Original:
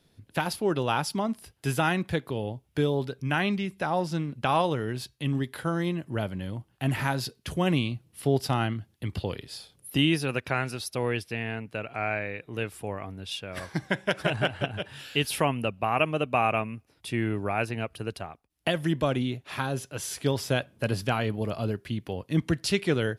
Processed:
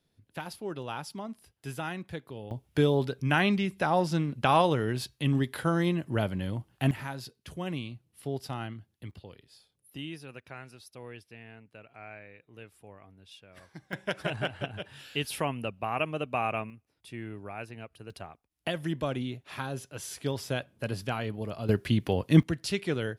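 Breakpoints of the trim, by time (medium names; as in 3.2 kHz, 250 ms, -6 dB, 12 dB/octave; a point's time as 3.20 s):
-10.5 dB
from 2.51 s +1.5 dB
from 6.91 s -10 dB
from 9.11 s -16.5 dB
from 13.93 s -5.5 dB
from 16.70 s -12 dB
from 18.10 s -5.5 dB
from 21.69 s +6 dB
from 22.43 s -5 dB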